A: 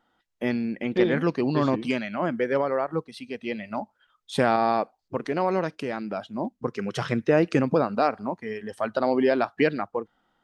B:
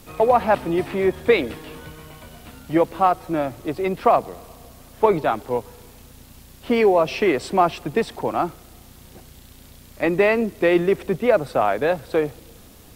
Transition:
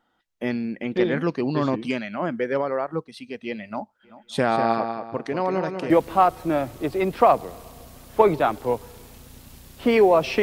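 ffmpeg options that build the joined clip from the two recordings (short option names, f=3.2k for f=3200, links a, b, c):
-filter_complex "[0:a]asplit=3[a][b][c];[a]afade=t=out:st=4.03:d=0.02[d];[b]asplit=2[e][f];[f]adelay=193,lowpass=f=5k:p=1,volume=-7dB,asplit=2[g][h];[h]adelay=193,lowpass=f=5k:p=1,volume=0.32,asplit=2[i][j];[j]adelay=193,lowpass=f=5k:p=1,volume=0.32,asplit=2[k][l];[l]adelay=193,lowpass=f=5k:p=1,volume=0.32[m];[e][g][i][k][m]amix=inputs=5:normalize=0,afade=t=in:st=4.03:d=0.02,afade=t=out:st=5.9:d=0.02[n];[c]afade=t=in:st=5.9:d=0.02[o];[d][n][o]amix=inputs=3:normalize=0,apad=whole_dur=10.42,atrim=end=10.42,atrim=end=5.902[p];[1:a]atrim=start=2.738:end=7.26[q];[p][q]acrossfade=d=0.004:c1=hsin:c2=hsin"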